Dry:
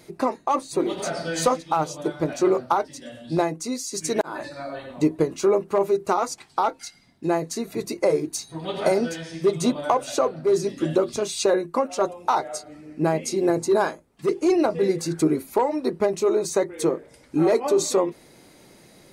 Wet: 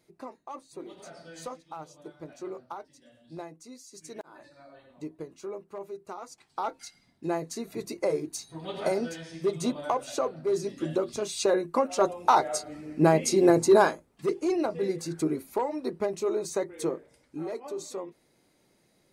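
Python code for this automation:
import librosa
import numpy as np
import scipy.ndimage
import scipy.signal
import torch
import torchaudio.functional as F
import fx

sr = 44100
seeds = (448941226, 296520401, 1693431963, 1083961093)

y = fx.gain(x, sr, db=fx.line((6.2, -18.5), (6.75, -7.0), (11.03, -7.0), (12.41, 1.5), (13.82, 1.5), (14.47, -7.5), (16.96, -7.5), (17.44, -16.0)))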